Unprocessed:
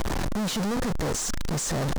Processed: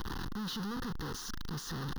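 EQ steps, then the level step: low shelf 190 Hz -5.5 dB; fixed phaser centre 2300 Hz, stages 6; -6.5 dB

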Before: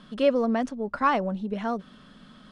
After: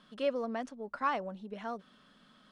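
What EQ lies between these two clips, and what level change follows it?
low shelf 230 Hz -11.5 dB; -8.0 dB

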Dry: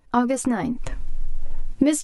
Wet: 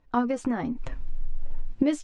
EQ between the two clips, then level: air absorption 120 m; -4.5 dB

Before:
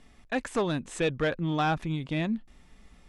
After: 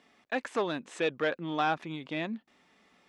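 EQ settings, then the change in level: HPF 250 Hz 12 dB/oct; low shelf 340 Hz -4.5 dB; bell 9900 Hz -11.5 dB 1.1 oct; 0.0 dB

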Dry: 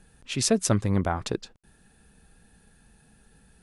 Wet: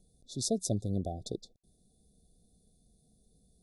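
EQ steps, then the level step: brick-wall FIR band-stop 770–3400 Hz; -8.5 dB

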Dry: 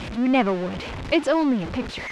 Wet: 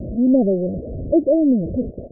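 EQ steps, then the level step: steep low-pass 660 Hz 96 dB/oct; +5.5 dB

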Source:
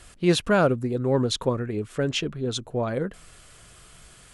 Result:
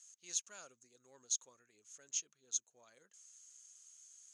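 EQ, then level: band-pass 6500 Hz, Q 19; +8.0 dB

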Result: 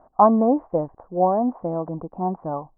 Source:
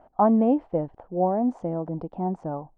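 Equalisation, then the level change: dynamic EQ 760 Hz, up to +5 dB, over -35 dBFS, Q 0.85; LPF 1600 Hz 24 dB/oct; bell 1100 Hz +9 dB 0.22 oct; 0.0 dB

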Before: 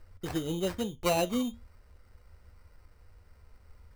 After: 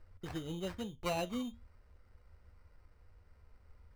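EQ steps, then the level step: dynamic EQ 410 Hz, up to -5 dB, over -43 dBFS, Q 0.74; high shelf 5600 Hz -10 dB; -5.0 dB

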